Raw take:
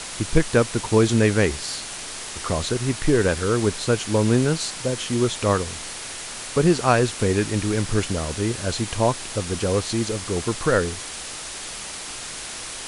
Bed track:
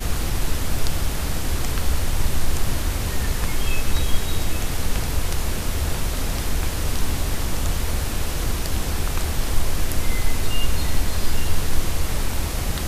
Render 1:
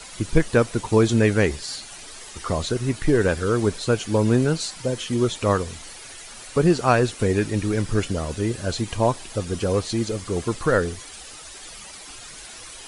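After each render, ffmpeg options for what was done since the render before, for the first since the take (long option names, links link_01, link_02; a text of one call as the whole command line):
ffmpeg -i in.wav -af "afftdn=noise_reduction=11:noise_floor=-34" out.wav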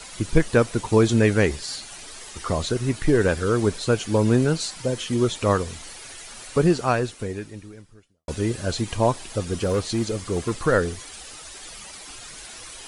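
ffmpeg -i in.wav -filter_complex "[0:a]asettb=1/sr,asplit=3[link_01][link_02][link_03];[link_01]atrim=end=9.404[link_04];[link_02]atrim=start=9.4:end=10.61,asetpts=PTS-STARTPTS,afade=type=in:duration=0.004:curve=qsin,afade=type=out:start_time=1.206:duration=0.004:curve=qsin,asoftclip=type=hard:threshold=-17dB[link_05];[link_03]atrim=start=10.606[link_06];[link_04][link_05]acrossfade=duration=0.004:curve1=hsin:curve2=qsin[link_07];[link_07][link_06]acrossfade=duration=0.004:curve1=qsin:curve2=hsin,asplit=2[link_08][link_09];[link_08]atrim=end=8.28,asetpts=PTS-STARTPTS,afade=type=out:start_time=6.6:duration=1.68:curve=qua[link_10];[link_09]atrim=start=8.28,asetpts=PTS-STARTPTS,afade=type=in:duration=0.004:curve=hsin[link_11];[link_10][link_11]concat=n=2:v=0:a=1" out.wav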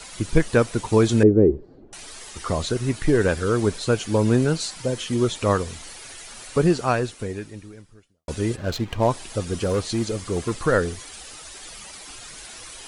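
ffmpeg -i in.wav -filter_complex "[0:a]asettb=1/sr,asplit=3[link_01][link_02][link_03];[link_01]atrim=end=1.234[link_04];[link_02]atrim=start=1.23:end=1.93,asetpts=PTS-STARTPTS,afade=type=in:duration=0.004:curve=qsin,afade=type=out:start_time=0.696:duration=0.004:curve=qsin,lowpass=frequency=370:width_type=q:width=3.1[link_05];[link_03]atrim=start=1.926[link_06];[link_04][link_05]acrossfade=duration=0.004:curve1=hsin:curve2=qsin[link_07];[link_07][link_06]acrossfade=duration=0.004:curve1=qsin:curve2=hsin,asplit=3[link_08][link_09][link_10];[link_08]afade=type=out:start_time=8.55:duration=0.02[link_11];[link_09]adynamicsmooth=sensitivity=6:basefreq=1600,afade=type=in:start_time=8.55:duration=0.02,afade=type=out:start_time=9.09:duration=0.02[link_12];[link_10]afade=type=in:start_time=9.09:duration=0.02[link_13];[link_11][link_12][link_13]amix=inputs=3:normalize=0" out.wav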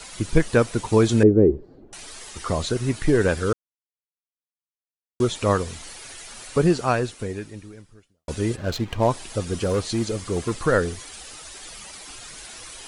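ffmpeg -i in.wav -filter_complex "[0:a]asplit=3[link_01][link_02][link_03];[link_01]atrim=end=3.53,asetpts=PTS-STARTPTS,afade=type=out:start_time=3.526:duration=0.004:curve=hsin[link_04];[link_02]atrim=start=3.53:end=5.2,asetpts=PTS-STARTPTS,volume=0[link_05];[link_03]atrim=start=5.2,asetpts=PTS-STARTPTS,afade=type=in:duration=0.004:curve=hsin[link_06];[link_04][link_05][link_06]concat=n=3:v=0:a=1" out.wav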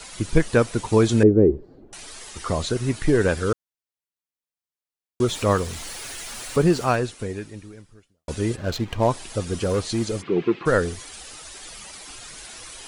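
ffmpeg -i in.wav -filter_complex "[0:a]asettb=1/sr,asplit=3[link_01][link_02][link_03];[link_01]atrim=end=5.284[link_04];[link_02]atrim=start=5.28:end=6.96,asetpts=PTS-STARTPTS,afade=type=in:duration=0.004:curve=qsin,afade=type=out:start_time=1.676:duration=0.004:curve=qsin,aeval=exprs='val(0)+0.5*0.0168*sgn(val(0))':channel_layout=same[link_05];[link_03]atrim=start=6.956[link_06];[link_04][link_05]acrossfade=duration=0.004:curve1=hsin:curve2=qsin[link_07];[link_07][link_06]acrossfade=duration=0.004:curve1=qsin:curve2=hsin,asplit=3[link_08][link_09][link_10];[link_08]afade=type=out:start_time=10.21:duration=0.02[link_11];[link_09]highpass=frequency=150:width=0.5412,highpass=frequency=150:width=1.3066,equalizer=frequency=160:width_type=q:width=4:gain=6,equalizer=frequency=360:width_type=q:width=4:gain=10,equalizer=frequency=600:width_type=q:width=4:gain=-7,equalizer=frequency=1100:width_type=q:width=4:gain=-3,equalizer=frequency=2500:width_type=q:width=4:gain=6,lowpass=frequency=3300:width=0.5412,lowpass=frequency=3300:width=1.3066,afade=type=in:start_time=10.21:duration=0.02,afade=type=out:start_time=10.65:duration=0.02[link_12];[link_10]afade=type=in:start_time=10.65:duration=0.02[link_13];[link_11][link_12][link_13]amix=inputs=3:normalize=0" out.wav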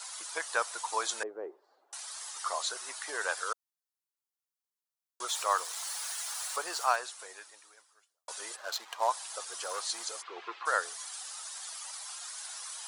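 ffmpeg -i in.wav -af "highpass=frequency=840:width=0.5412,highpass=frequency=840:width=1.3066,equalizer=frequency=2400:width=1.2:gain=-9.5" out.wav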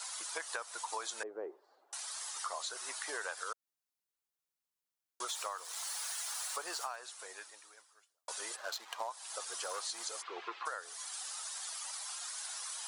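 ffmpeg -i in.wav -af "alimiter=limit=-19dB:level=0:latency=1:release=489,acompressor=threshold=-36dB:ratio=12" out.wav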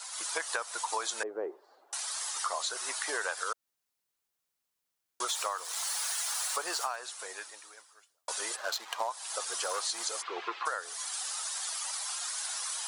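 ffmpeg -i in.wav -af "dynaudnorm=framelen=110:gausssize=3:maxgain=6.5dB" out.wav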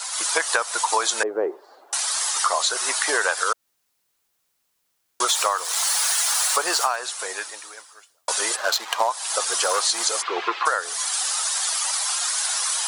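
ffmpeg -i in.wav -af "volume=12dB" out.wav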